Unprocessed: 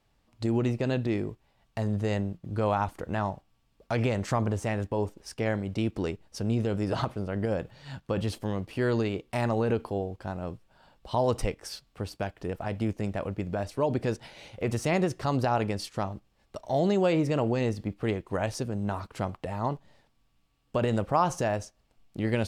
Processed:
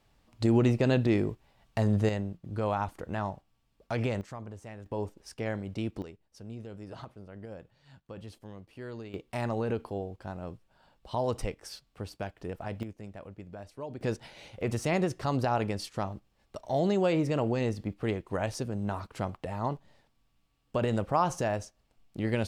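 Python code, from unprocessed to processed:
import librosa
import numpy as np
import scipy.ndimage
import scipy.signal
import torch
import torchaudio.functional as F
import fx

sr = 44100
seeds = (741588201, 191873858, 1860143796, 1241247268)

y = fx.gain(x, sr, db=fx.steps((0.0, 3.0), (2.09, -3.5), (4.21, -15.0), (4.86, -5.0), (6.02, -15.0), (9.14, -4.5), (12.83, -13.0), (14.01, -2.0)))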